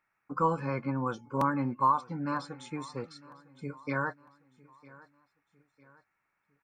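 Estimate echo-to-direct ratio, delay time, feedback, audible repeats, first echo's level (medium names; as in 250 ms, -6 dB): -21.0 dB, 954 ms, 45%, 2, -22.0 dB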